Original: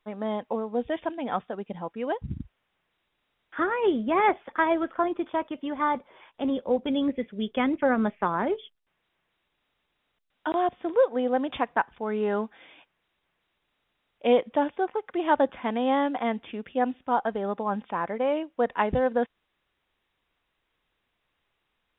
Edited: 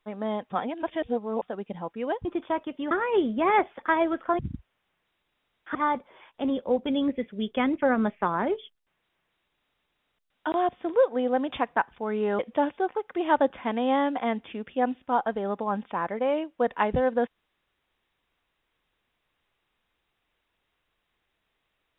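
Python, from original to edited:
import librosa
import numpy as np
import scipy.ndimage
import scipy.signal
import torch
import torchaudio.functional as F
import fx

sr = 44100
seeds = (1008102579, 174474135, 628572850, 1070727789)

y = fx.edit(x, sr, fx.reverse_span(start_s=0.5, length_s=0.92),
    fx.swap(start_s=2.25, length_s=1.36, other_s=5.09, other_length_s=0.66),
    fx.cut(start_s=12.39, length_s=1.99), tone=tone)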